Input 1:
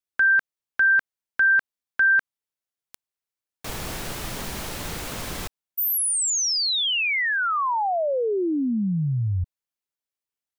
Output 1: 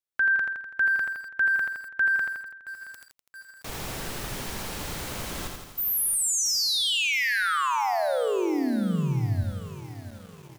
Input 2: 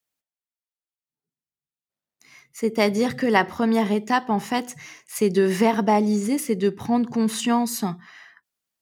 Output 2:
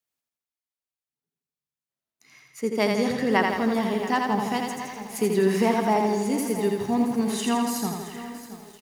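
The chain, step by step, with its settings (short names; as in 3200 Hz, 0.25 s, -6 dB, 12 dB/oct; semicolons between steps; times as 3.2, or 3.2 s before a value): feedback echo 83 ms, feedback 58%, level -4 dB; lo-fi delay 0.673 s, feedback 55%, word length 6-bit, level -14 dB; gain -4 dB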